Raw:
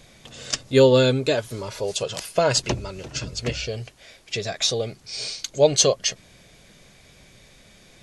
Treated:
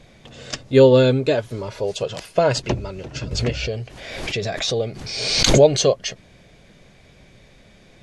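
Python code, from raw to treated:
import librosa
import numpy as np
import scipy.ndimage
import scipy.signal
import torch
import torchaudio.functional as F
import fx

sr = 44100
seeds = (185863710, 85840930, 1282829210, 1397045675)

y = fx.lowpass(x, sr, hz=2100.0, slope=6)
y = fx.peak_eq(y, sr, hz=1200.0, db=-2.5, octaves=0.77)
y = fx.pre_swell(y, sr, db_per_s=41.0, at=(3.31, 5.82))
y = y * librosa.db_to_amplitude(3.5)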